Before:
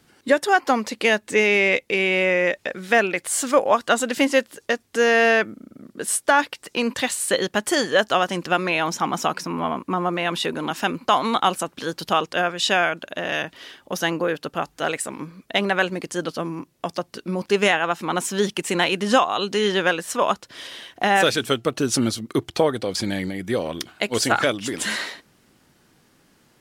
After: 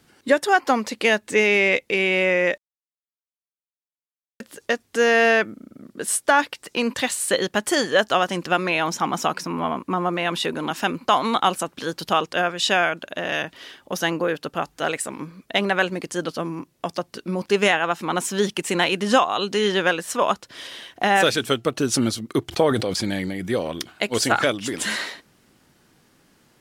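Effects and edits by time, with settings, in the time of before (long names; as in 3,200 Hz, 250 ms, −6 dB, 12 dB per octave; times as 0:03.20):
0:02.58–0:04.40: silence
0:22.48–0:23.52: level that may fall only so fast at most 49 dB per second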